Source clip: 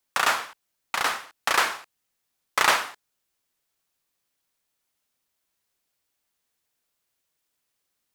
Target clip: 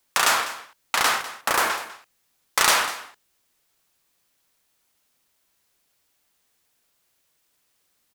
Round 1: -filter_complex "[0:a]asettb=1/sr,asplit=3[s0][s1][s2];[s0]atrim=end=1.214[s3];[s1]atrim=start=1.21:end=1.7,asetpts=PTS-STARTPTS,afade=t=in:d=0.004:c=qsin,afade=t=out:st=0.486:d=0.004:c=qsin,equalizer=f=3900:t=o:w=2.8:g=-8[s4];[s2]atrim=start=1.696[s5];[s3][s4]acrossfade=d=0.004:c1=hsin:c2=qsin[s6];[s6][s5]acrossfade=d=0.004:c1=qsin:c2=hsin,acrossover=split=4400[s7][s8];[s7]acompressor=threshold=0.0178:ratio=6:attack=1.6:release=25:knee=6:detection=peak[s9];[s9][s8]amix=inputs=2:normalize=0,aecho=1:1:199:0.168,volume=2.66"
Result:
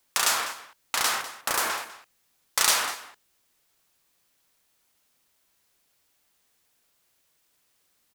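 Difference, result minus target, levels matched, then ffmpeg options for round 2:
compression: peak gain reduction +7.5 dB
-filter_complex "[0:a]asettb=1/sr,asplit=3[s0][s1][s2];[s0]atrim=end=1.214[s3];[s1]atrim=start=1.21:end=1.7,asetpts=PTS-STARTPTS,afade=t=in:d=0.004:c=qsin,afade=t=out:st=0.486:d=0.004:c=qsin,equalizer=f=3900:t=o:w=2.8:g=-8[s4];[s2]atrim=start=1.696[s5];[s3][s4]acrossfade=d=0.004:c1=hsin:c2=qsin[s6];[s6][s5]acrossfade=d=0.004:c1=qsin:c2=hsin,acrossover=split=4400[s7][s8];[s7]acompressor=threshold=0.0501:ratio=6:attack=1.6:release=25:knee=6:detection=peak[s9];[s9][s8]amix=inputs=2:normalize=0,aecho=1:1:199:0.168,volume=2.66"

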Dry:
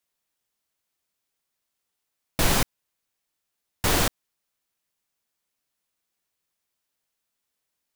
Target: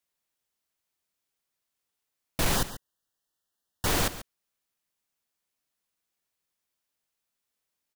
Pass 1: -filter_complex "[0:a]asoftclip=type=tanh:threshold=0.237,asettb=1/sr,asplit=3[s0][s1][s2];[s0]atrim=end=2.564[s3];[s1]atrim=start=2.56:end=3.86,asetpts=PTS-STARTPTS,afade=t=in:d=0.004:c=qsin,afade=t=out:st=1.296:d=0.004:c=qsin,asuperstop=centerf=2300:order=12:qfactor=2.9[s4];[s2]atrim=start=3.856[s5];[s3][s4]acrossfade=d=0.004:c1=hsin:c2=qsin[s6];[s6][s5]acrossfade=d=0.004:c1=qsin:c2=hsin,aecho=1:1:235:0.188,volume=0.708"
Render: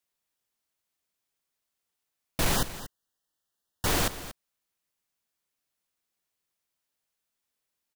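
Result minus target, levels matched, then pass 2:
echo 97 ms late
-filter_complex "[0:a]asoftclip=type=tanh:threshold=0.237,asettb=1/sr,asplit=3[s0][s1][s2];[s0]atrim=end=2.564[s3];[s1]atrim=start=2.56:end=3.86,asetpts=PTS-STARTPTS,afade=t=in:d=0.004:c=qsin,afade=t=out:st=1.296:d=0.004:c=qsin,asuperstop=centerf=2300:order=12:qfactor=2.9[s4];[s2]atrim=start=3.856[s5];[s3][s4]acrossfade=d=0.004:c1=hsin:c2=qsin[s6];[s6][s5]acrossfade=d=0.004:c1=qsin:c2=hsin,aecho=1:1:138:0.188,volume=0.708"

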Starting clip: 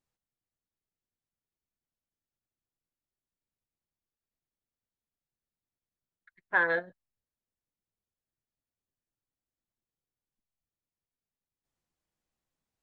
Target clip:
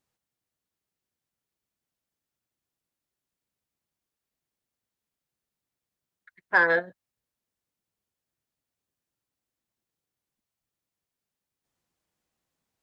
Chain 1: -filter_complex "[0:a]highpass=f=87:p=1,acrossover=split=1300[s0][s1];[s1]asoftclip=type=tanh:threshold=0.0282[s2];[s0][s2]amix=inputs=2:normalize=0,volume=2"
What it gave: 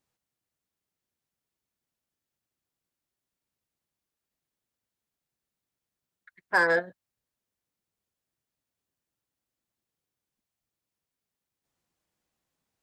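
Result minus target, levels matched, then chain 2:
saturation: distortion +12 dB
-filter_complex "[0:a]highpass=f=87:p=1,acrossover=split=1300[s0][s1];[s1]asoftclip=type=tanh:threshold=0.0944[s2];[s0][s2]amix=inputs=2:normalize=0,volume=2"

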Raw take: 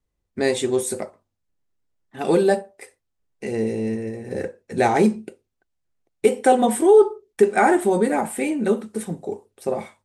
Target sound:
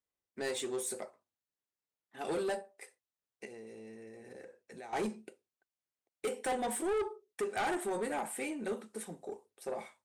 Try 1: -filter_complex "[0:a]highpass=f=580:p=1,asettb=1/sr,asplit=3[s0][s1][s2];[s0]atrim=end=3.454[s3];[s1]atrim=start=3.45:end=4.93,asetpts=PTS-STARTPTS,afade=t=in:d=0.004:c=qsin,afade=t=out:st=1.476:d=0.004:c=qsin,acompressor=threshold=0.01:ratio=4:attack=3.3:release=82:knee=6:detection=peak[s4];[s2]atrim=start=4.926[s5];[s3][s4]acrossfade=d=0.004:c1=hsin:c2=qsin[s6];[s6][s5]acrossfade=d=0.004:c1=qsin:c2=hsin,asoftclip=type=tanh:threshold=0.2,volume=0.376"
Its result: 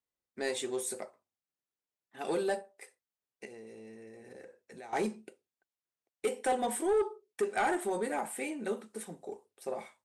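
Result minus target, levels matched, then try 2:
saturation: distortion -7 dB
-filter_complex "[0:a]highpass=f=580:p=1,asettb=1/sr,asplit=3[s0][s1][s2];[s0]atrim=end=3.454[s3];[s1]atrim=start=3.45:end=4.93,asetpts=PTS-STARTPTS,afade=t=in:d=0.004:c=qsin,afade=t=out:st=1.476:d=0.004:c=qsin,acompressor=threshold=0.01:ratio=4:attack=3.3:release=82:knee=6:detection=peak[s4];[s2]atrim=start=4.926[s5];[s3][s4]acrossfade=d=0.004:c1=hsin:c2=qsin[s6];[s6][s5]acrossfade=d=0.004:c1=qsin:c2=hsin,asoftclip=type=tanh:threshold=0.0891,volume=0.376"

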